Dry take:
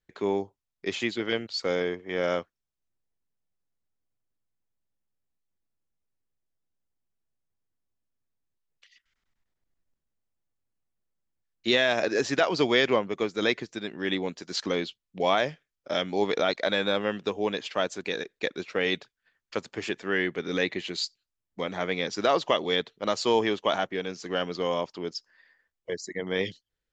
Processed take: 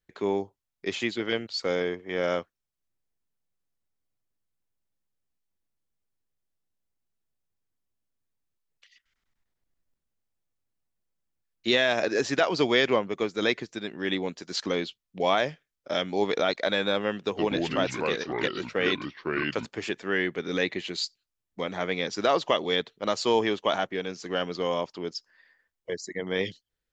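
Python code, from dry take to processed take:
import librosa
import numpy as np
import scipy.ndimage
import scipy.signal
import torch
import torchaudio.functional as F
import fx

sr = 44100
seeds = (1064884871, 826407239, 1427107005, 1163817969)

y = fx.echo_pitch(x, sr, ms=103, semitones=-4, count=2, db_per_echo=-3.0, at=(17.2, 19.66))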